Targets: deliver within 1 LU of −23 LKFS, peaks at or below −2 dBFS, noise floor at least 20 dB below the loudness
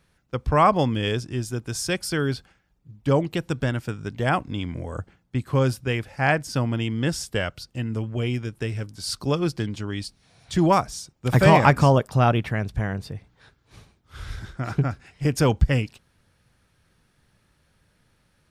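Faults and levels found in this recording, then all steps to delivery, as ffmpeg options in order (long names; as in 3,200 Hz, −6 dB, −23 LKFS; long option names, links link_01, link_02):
integrated loudness −24.0 LKFS; sample peak −2.0 dBFS; target loudness −23.0 LKFS
→ -af "volume=1dB,alimiter=limit=-2dB:level=0:latency=1"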